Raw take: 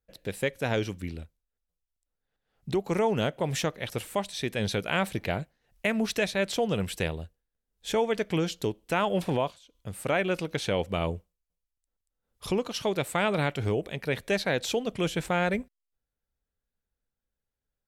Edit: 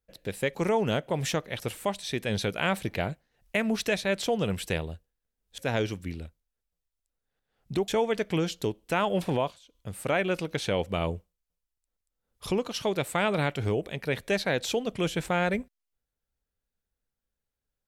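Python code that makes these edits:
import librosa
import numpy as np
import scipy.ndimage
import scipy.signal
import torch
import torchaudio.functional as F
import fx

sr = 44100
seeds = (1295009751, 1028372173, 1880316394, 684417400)

y = fx.edit(x, sr, fx.move(start_s=0.55, length_s=2.3, to_s=7.88), tone=tone)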